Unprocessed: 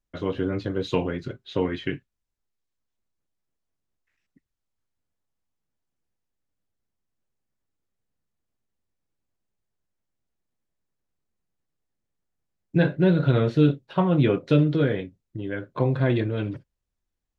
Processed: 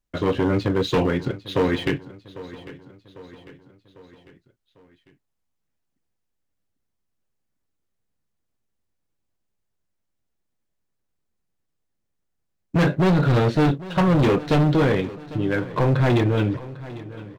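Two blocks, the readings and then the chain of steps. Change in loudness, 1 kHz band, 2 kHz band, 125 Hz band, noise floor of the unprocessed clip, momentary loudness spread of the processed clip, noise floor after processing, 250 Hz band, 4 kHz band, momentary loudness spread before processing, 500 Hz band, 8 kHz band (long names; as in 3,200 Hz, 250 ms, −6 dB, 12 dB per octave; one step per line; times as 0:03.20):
+3.0 dB, +7.5 dB, +5.5 dB, +3.0 dB, −82 dBFS, 18 LU, −77 dBFS, +2.5 dB, +6.0 dB, 13 LU, +3.0 dB, can't be measured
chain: leveller curve on the samples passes 1
gain into a clipping stage and back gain 19 dB
repeating echo 799 ms, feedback 52%, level −17.5 dB
level +4 dB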